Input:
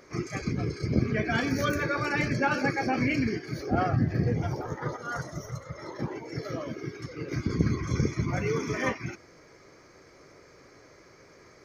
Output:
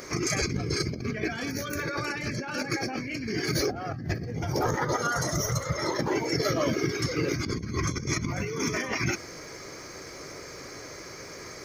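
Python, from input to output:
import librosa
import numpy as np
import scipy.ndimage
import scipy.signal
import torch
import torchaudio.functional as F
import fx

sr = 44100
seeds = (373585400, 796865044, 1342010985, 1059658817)

y = fx.high_shelf(x, sr, hz=4300.0, db=11.5)
y = fx.over_compress(y, sr, threshold_db=-35.0, ratio=-1.0)
y = y * librosa.db_to_amplitude(5.0)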